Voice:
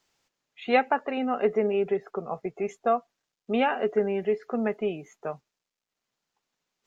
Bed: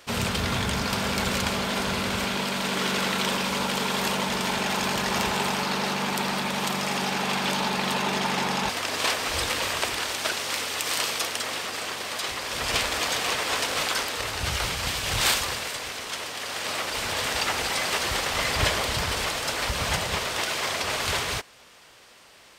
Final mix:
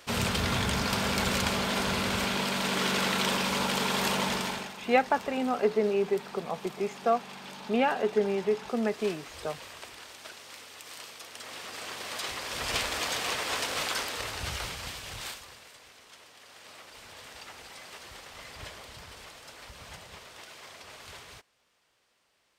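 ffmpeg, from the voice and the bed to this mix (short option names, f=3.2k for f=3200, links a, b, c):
-filter_complex "[0:a]adelay=4200,volume=-1.5dB[a];[1:a]volume=11dB,afade=t=out:st=4.28:d=0.45:silence=0.158489,afade=t=in:st=11.24:d=0.93:silence=0.223872,afade=t=out:st=14.17:d=1.21:silence=0.177828[b];[a][b]amix=inputs=2:normalize=0"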